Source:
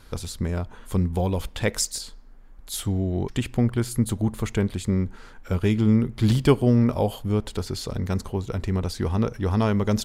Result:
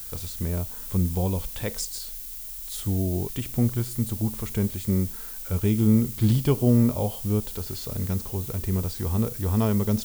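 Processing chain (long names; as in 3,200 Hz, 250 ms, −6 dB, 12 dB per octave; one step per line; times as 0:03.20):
background noise violet −35 dBFS
dynamic equaliser 1,700 Hz, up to −4 dB, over −41 dBFS, Q 1.2
harmonic and percussive parts rebalanced percussive −7 dB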